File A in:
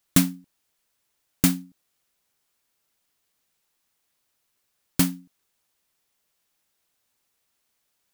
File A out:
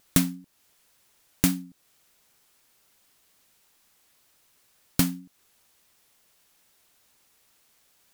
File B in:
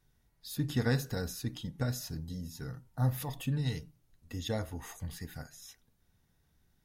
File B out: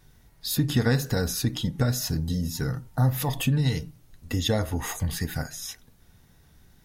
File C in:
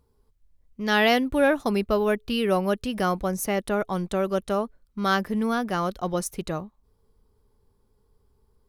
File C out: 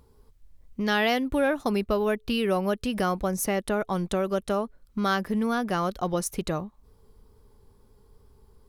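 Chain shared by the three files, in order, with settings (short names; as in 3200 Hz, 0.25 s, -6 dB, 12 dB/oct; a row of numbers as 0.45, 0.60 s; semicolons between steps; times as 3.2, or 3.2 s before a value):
compressor 2:1, threshold -39 dBFS; wow and flutter 24 cents; match loudness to -27 LUFS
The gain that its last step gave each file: +10.5, +15.0, +8.5 dB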